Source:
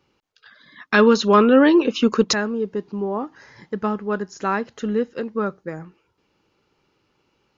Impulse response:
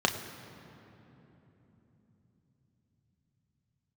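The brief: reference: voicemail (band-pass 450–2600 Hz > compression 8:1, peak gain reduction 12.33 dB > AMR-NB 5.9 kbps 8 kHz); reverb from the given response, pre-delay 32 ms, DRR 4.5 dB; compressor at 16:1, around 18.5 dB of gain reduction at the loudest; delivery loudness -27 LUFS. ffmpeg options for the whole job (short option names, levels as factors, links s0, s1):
-filter_complex "[0:a]acompressor=threshold=0.0398:ratio=16,asplit=2[s0][s1];[1:a]atrim=start_sample=2205,adelay=32[s2];[s1][s2]afir=irnorm=-1:irlink=0,volume=0.158[s3];[s0][s3]amix=inputs=2:normalize=0,highpass=450,lowpass=2600,acompressor=threshold=0.0126:ratio=8,volume=7.94" -ar 8000 -c:a libopencore_amrnb -b:a 5900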